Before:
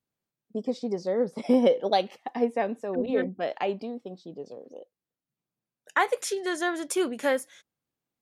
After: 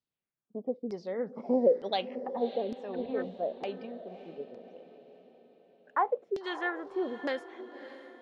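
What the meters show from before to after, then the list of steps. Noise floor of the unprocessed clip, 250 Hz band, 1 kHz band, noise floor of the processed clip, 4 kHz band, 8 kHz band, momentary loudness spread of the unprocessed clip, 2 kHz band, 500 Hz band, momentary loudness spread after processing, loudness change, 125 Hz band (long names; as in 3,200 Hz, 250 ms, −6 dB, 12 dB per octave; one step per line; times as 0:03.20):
below −85 dBFS, −7.0 dB, −4.5 dB, below −85 dBFS, −6.0 dB, below −25 dB, 19 LU, −7.5 dB, −4.5 dB, 17 LU, −5.5 dB, −7.5 dB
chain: auto-filter low-pass saw down 1.1 Hz 340–5,000 Hz
feedback delay with all-pass diffusion 602 ms, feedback 46%, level −13 dB
level −8.5 dB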